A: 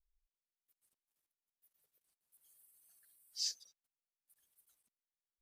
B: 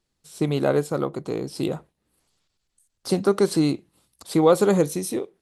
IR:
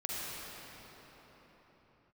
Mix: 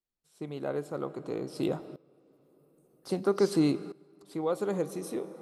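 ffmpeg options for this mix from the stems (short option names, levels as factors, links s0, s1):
-filter_complex "[0:a]volume=1.06[s0];[1:a]lowshelf=f=140:g=-8.5,volume=0.944,asplit=2[s1][s2];[s2]volume=0.106[s3];[2:a]atrim=start_sample=2205[s4];[s3][s4]afir=irnorm=-1:irlink=0[s5];[s0][s1][s5]amix=inputs=3:normalize=0,equalizer=f=8500:w=0.3:g=-6.5,aeval=exprs='val(0)*pow(10,-18*if(lt(mod(-0.51*n/s,1),2*abs(-0.51)/1000),1-mod(-0.51*n/s,1)/(2*abs(-0.51)/1000),(mod(-0.51*n/s,1)-2*abs(-0.51)/1000)/(1-2*abs(-0.51)/1000))/20)':c=same"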